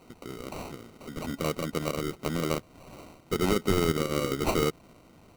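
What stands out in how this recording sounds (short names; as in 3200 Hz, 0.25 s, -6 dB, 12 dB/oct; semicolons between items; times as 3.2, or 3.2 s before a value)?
aliases and images of a low sample rate 1700 Hz, jitter 0%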